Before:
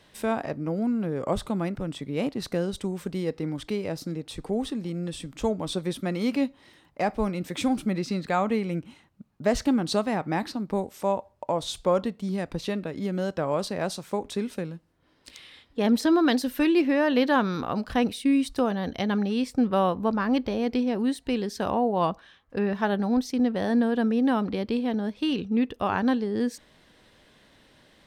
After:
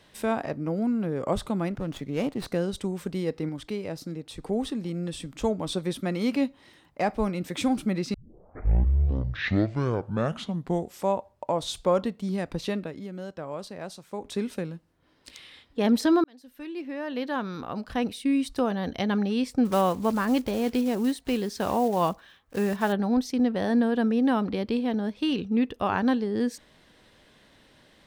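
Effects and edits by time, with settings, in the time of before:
1.71–2.46 s: sliding maximum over 5 samples
3.49–4.43 s: gain -3 dB
8.14 s: tape start 2.97 s
12.77–14.39 s: dip -9 dB, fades 0.28 s
16.24–18.93 s: fade in
19.65–22.93 s: block-companded coder 5-bit

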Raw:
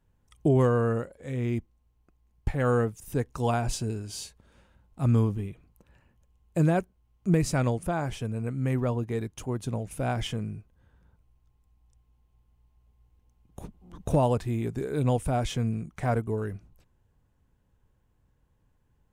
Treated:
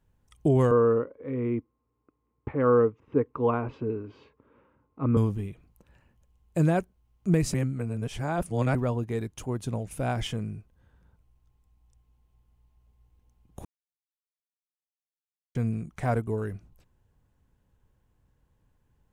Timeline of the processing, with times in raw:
0.71–5.17 s: cabinet simulation 130–2200 Hz, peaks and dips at 180 Hz -8 dB, 280 Hz +8 dB, 450 Hz +8 dB, 720 Hz -8 dB, 1.1 kHz +8 dB, 1.7 kHz -7 dB
7.54–8.75 s: reverse
13.65–15.55 s: mute

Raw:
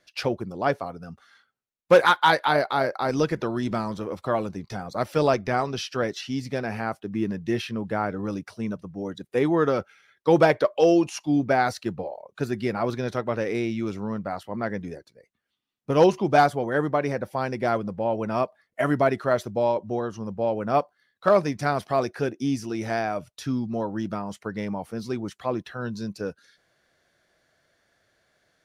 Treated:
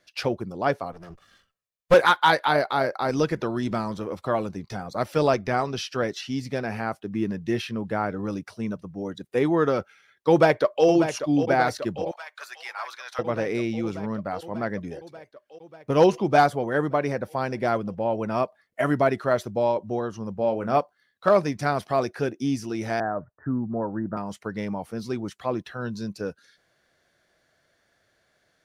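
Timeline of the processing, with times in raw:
0.92–1.94 s: comb filter that takes the minimum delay 1.7 ms
10.29–10.86 s: echo throw 590 ms, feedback 75%, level -9.5 dB
12.11–13.19 s: high-pass 980 Hz 24 dB/octave
20.35–20.78 s: doubling 31 ms -10 dB
23.00–24.17 s: steep low-pass 1.8 kHz 96 dB/octave

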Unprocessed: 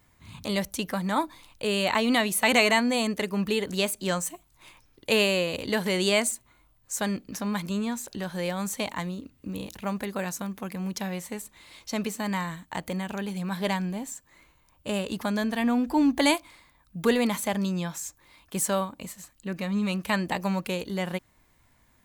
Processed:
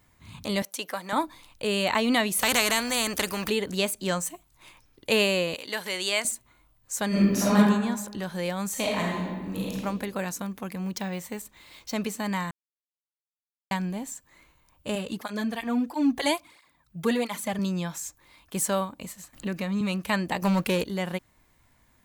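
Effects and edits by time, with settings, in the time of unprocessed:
0.62–1.13 s: high-pass 450 Hz
2.39–3.50 s: spectrum-flattening compressor 2:1
5.54–6.25 s: high-pass 1.1 kHz 6 dB/octave
7.08–7.56 s: reverb throw, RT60 1.1 s, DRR -10.5 dB
8.70–9.74 s: reverb throw, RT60 1.5 s, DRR -3 dB
10.84–11.94 s: careless resampling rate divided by 2×, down filtered, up hold
12.51–13.71 s: mute
14.95–17.59 s: cancelling through-zero flanger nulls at 1.5 Hz, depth 4.4 ms
19.33–19.81 s: three bands compressed up and down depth 70%
20.42–20.84 s: waveshaping leveller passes 2

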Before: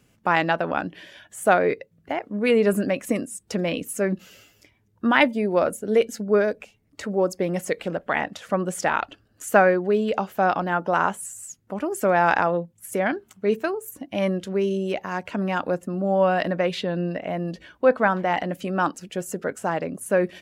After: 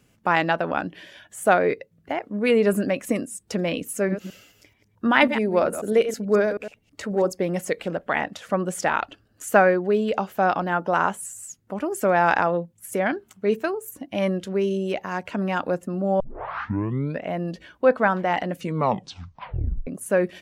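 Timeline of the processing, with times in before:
3.98–7.31 s: chunks repeated in reverse 108 ms, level -10 dB
16.20 s: tape start 1.03 s
18.53 s: tape stop 1.34 s

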